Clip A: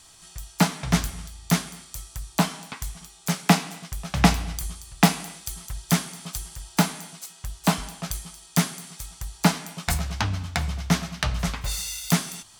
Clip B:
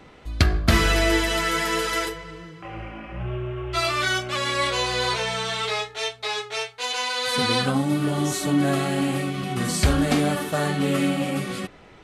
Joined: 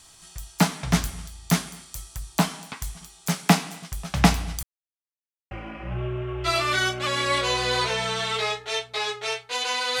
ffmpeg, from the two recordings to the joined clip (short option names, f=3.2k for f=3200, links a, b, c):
-filter_complex "[0:a]apad=whole_dur=10,atrim=end=10,asplit=2[a][b];[a]atrim=end=4.63,asetpts=PTS-STARTPTS,afade=t=out:st=4.626:d=0.004:c=hsin[c];[b]atrim=start=4.63:end=5.51,asetpts=PTS-STARTPTS,volume=0[d];[1:a]atrim=start=2.8:end=7.29,asetpts=PTS-STARTPTS,afade=t=in:d=0.004:c=hsin[e];[c][d][e]concat=n=3:v=0:a=1"